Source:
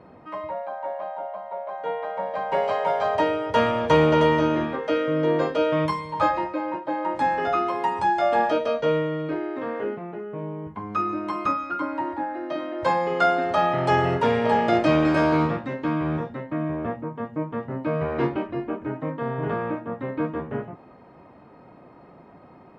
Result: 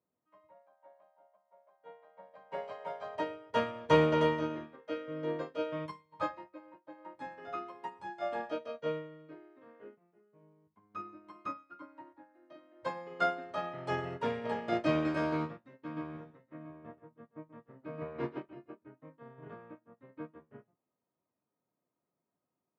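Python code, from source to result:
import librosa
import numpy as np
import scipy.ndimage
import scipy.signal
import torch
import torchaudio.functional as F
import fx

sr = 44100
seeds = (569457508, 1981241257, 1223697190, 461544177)

y = fx.echo_single(x, sr, ms=133, db=-5.0, at=(15.88, 18.75), fade=0.02)
y = scipy.signal.sosfilt(scipy.signal.butter(2, 87.0, 'highpass', fs=sr, output='sos'), y)
y = fx.peak_eq(y, sr, hz=810.0, db=-5.5, octaves=0.2)
y = fx.upward_expand(y, sr, threshold_db=-38.0, expansion=2.5)
y = F.gain(torch.from_numpy(y), -5.0).numpy()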